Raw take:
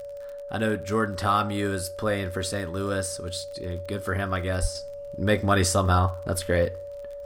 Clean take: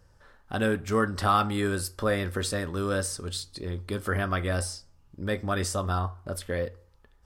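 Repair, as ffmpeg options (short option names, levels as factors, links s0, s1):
-filter_complex "[0:a]adeclick=t=4,bandreject=f=570:w=30,asplit=3[s0][s1][s2];[s0]afade=t=out:st=4.61:d=0.02[s3];[s1]highpass=f=140:w=0.5412,highpass=f=140:w=1.3066,afade=t=in:st=4.61:d=0.02,afade=t=out:st=4.73:d=0.02[s4];[s2]afade=t=in:st=4.73:d=0.02[s5];[s3][s4][s5]amix=inputs=3:normalize=0,asetnsamples=n=441:p=0,asendcmd='4.75 volume volume -7dB',volume=1"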